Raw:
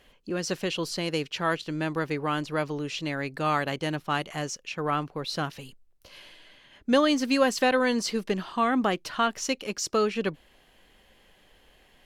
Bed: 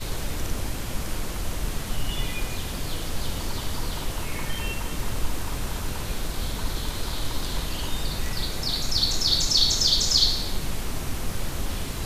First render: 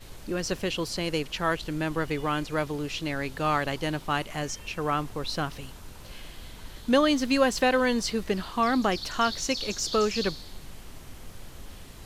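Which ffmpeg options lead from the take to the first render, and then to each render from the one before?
-filter_complex "[1:a]volume=0.178[s0];[0:a][s0]amix=inputs=2:normalize=0"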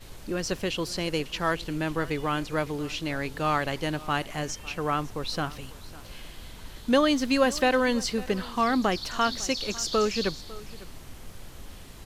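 -af "aecho=1:1:551:0.106"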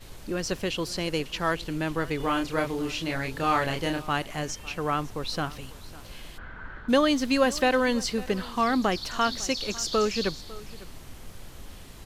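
-filter_complex "[0:a]asettb=1/sr,asplit=3[s0][s1][s2];[s0]atrim=end=2.174[s3];[s1]atrim=start=2.17:end=4.02,asetpts=PTS-STARTPTS,afade=t=in:d=0.004:c=qsin,afade=t=out:st=1.846:d=0.004:c=qsin,asplit=2[s4][s5];[s5]adelay=30,volume=0.668[s6];[s4][s6]amix=inputs=2:normalize=0,atrim=end_sample=81585[s7];[s2]atrim=start=4.016[s8];[s3][s7]acrossfade=d=0.004:c1=hsin:c2=qsin[s9];[s9][s8]acrossfade=d=0.004:c1=qsin:c2=hsin,asplit=3[s10][s11][s12];[s10]afade=t=out:st=6.37:d=0.02[s13];[s11]lowpass=f=1500:t=q:w=7.2,afade=t=in:st=6.37:d=0.02,afade=t=out:st=6.88:d=0.02[s14];[s12]afade=t=in:st=6.88:d=0.02[s15];[s13][s14][s15]amix=inputs=3:normalize=0"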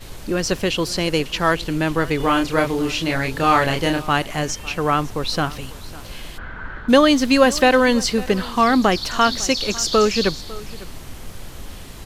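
-af "volume=2.66"

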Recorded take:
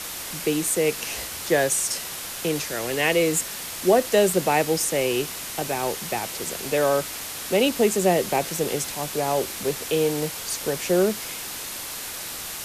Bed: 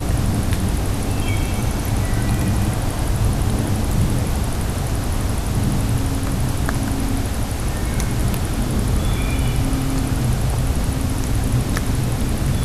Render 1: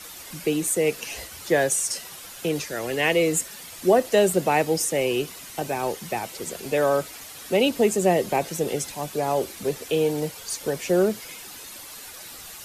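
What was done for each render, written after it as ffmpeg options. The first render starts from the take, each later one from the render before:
-af "afftdn=nr=10:nf=-34"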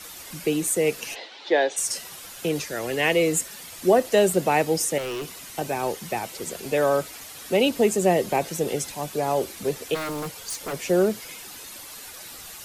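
-filter_complex "[0:a]asplit=3[s0][s1][s2];[s0]afade=t=out:st=1.14:d=0.02[s3];[s1]highpass=f=290:w=0.5412,highpass=f=290:w=1.3066,equalizer=f=850:t=q:w=4:g=6,equalizer=f=1200:t=q:w=4:g=-6,equalizer=f=3700:t=q:w=4:g=7,lowpass=f=4400:w=0.5412,lowpass=f=4400:w=1.3066,afade=t=in:st=1.14:d=0.02,afade=t=out:st=1.76:d=0.02[s4];[s2]afade=t=in:st=1.76:d=0.02[s5];[s3][s4][s5]amix=inputs=3:normalize=0,asettb=1/sr,asplit=3[s6][s7][s8];[s6]atrim=end=4.984[s9];[s7]atrim=start=4.98:end=5.41,asetpts=PTS-STARTPTS,afade=t=in:d=0.004:c=qsin,afade=t=out:st=0.426:d=0.004:c=qsin,asoftclip=type=hard:threshold=0.0376[s10];[s8]atrim=start=5.406[s11];[s9][s10]acrossfade=d=0.004:c1=hsin:c2=qsin[s12];[s12][s11]acrossfade=d=0.004:c1=qsin:c2=hsin,asplit=3[s13][s14][s15];[s13]afade=t=out:st=9.94:d=0.02[s16];[s14]aeval=exprs='0.0562*(abs(mod(val(0)/0.0562+3,4)-2)-1)':c=same,afade=t=in:st=9.94:d=0.02,afade=t=out:st=10.72:d=0.02[s17];[s15]afade=t=in:st=10.72:d=0.02[s18];[s16][s17][s18]amix=inputs=3:normalize=0"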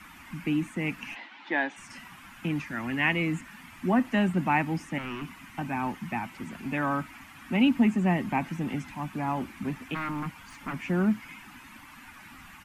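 -filter_complex "[0:a]acrossover=split=5400[s0][s1];[s1]acompressor=threshold=0.01:ratio=4:attack=1:release=60[s2];[s0][s2]amix=inputs=2:normalize=0,firequalizer=gain_entry='entry(140,0);entry(250,7);entry(440,-22);entry(900,0);entry(2400,-1);entry(3900,-17)':delay=0.05:min_phase=1"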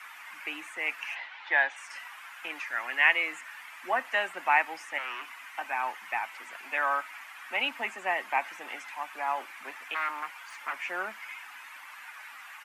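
-af "highpass=f=550:w=0.5412,highpass=f=550:w=1.3066,equalizer=f=1800:w=1.1:g=5"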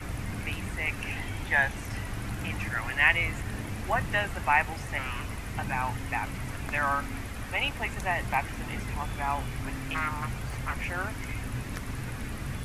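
-filter_complex "[1:a]volume=0.158[s0];[0:a][s0]amix=inputs=2:normalize=0"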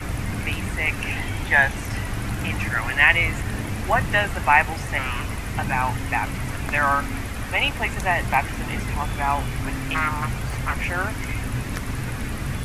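-af "volume=2.37,alimiter=limit=0.794:level=0:latency=1"

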